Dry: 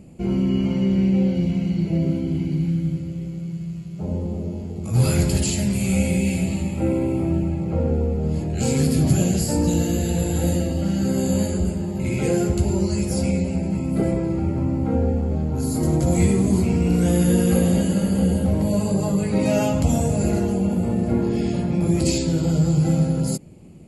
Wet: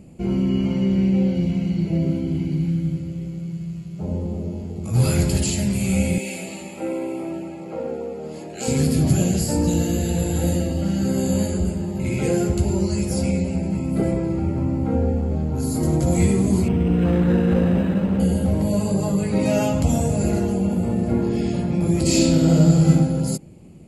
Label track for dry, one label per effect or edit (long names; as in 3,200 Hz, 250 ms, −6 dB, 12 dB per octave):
6.180000	8.680000	high-pass filter 390 Hz
16.680000	18.200000	linearly interpolated sample-rate reduction rate divided by 8×
22.030000	22.890000	thrown reverb, RT60 0.82 s, DRR −4 dB